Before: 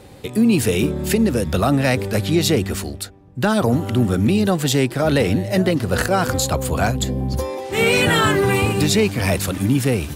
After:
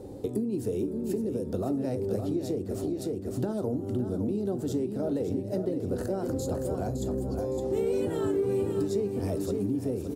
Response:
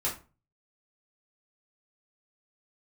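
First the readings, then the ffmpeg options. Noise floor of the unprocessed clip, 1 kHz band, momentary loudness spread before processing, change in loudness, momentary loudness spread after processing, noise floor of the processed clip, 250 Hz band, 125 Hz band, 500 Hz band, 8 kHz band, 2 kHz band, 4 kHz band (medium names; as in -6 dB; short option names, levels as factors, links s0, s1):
-39 dBFS, -19.0 dB, 7 LU, -12.0 dB, 4 LU, -37 dBFS, -11.0 dB, -14.5 dB, -8.5 dB, -20.5 dB, -30.0 dB, -26.5 dB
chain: -filter_complex "[0:a]firequalizer=gain_entry='entry(170,0);entry(300,9);entry(1100,-9);entry(2200,-18);entry(5400,-7)':delay=0.05:min_phase=1,asplit=2[s0][s1];[s1]aecho=0:1:563|1126|1689:0.398|0.115|0.0335[s2];[s0][s2]amix=inputs=2:normalize=0,acompressor=threshold=0.0562:ratio=6,asplit=2[s3][s4];[1:a]atrim=start_sample=2205,asetrate=42777,aresample=44100[s5];[s4][s5]afir=irnorm=-1:irlink=0,volume=0.178[s6];[s3][s6]amix=inputs=2:normalize=0,volume=0.596"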